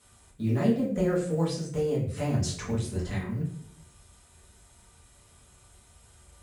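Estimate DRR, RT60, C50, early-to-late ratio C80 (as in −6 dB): −7.5 dB, 0.65 s, 6.0 dB, 9.5 dB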